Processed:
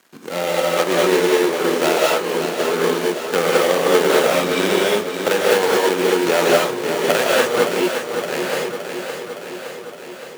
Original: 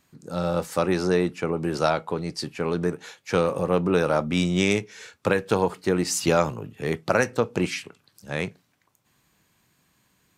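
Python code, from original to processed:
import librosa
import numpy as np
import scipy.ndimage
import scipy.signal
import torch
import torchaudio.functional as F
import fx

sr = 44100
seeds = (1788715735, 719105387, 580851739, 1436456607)

p1 = fx.dead_time(x, sr, dead_ms=0.24)
p2 = p1 + fx.echo_feedback(p1, sr, ms=566, feedback_pct=54, wet_db=-10, dry=0)
p3 = fx.rev_gated(p2, sr, seeds[0], gate_ms=250, shape='rising', drr_db=-4.5)
p4 = fx.sample_hold(p3, sr, seeds[1], rate_hz=1300.0, jitter_pct=0)
p5 = p3 + (p4 * 10.0 ** (-9.0 / 20.0))
p6 = scipy.signal.sosfilt(scipy.signal.butter(2, 390.0, 'highpass', fs=sr, output='sos'), p5)
p7 = fx.band_squash(p6, sr, depth_pct=40)
y = p7 * 10.0 ** (3.0 / 20.0)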